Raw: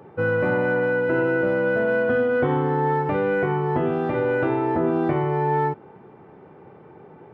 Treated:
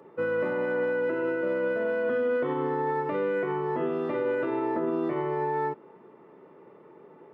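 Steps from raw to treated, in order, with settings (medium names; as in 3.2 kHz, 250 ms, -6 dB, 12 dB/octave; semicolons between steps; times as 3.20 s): high-pass 240 Hz 12 dB/octave; peak limiter -15.5 dBFS, peak gain reduction 5 dB; comb of notches 780 Hz; trim -3.5 dB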